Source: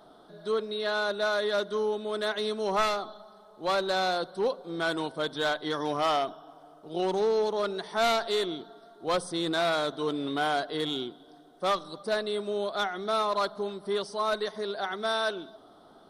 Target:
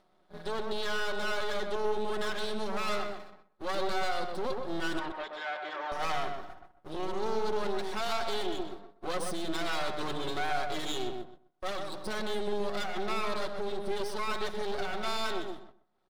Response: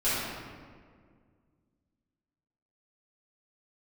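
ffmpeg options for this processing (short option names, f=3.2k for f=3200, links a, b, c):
-filter_complex "[0:a]agate=range=-34dB:threshold=-48dB:ratio=16:detection=peak,aecho=1:1:5.4:0.93,asplit=2[a][b];[b]acompressor=threshold=-39dB:ratio=6,volume=-2.5dB[c];[a][c]amix=inputs=2:normalize=0,alimiter=limit=-22dB:level=0:latency=1:release=31,acompressor=mode=upward:threshold=-53dB:ratio=2.5,aeval=exprs='max(val(0),0)':c=same,asettb=1/sr,asplit=3[d][e][f];[d]atrim=end=4.994[g];[e]atrim=start=4.99:end=5.92,asetpts=PTS-STARTPTS,afade=t=in:d=0.004:c=qsin,afade=t=out:st=0.926:d=0.004:c=qsin,highpass=550,lowpass=2.5k[h];[f]atrim=start=5.916[i];[g][h]acrossfade=d=0.004:c1=hsin:c2=qsin[j];[j][i]acrossfade=d=0.004:c1=qsin:c2=hsin,asplit=2[k][l];[l]adelay=126,lowpass=f=1.6k:p=1,volume=-3.5dB,asplit=2[m][n];[n]adelay=126,lowpass=f=1.6k:p=1,volume=0.19,asplit=2[o][p];[p]adelay=126,lowpass=f=1.6k:p=1,volume=0.19[q];[k][m][o][q]amix=inputs=4:normalize=0"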